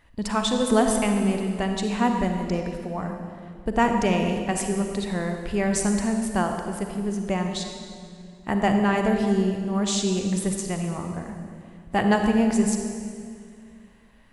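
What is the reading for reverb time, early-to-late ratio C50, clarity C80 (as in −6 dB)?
2.2 s, 4.5 dB, 5.5 dB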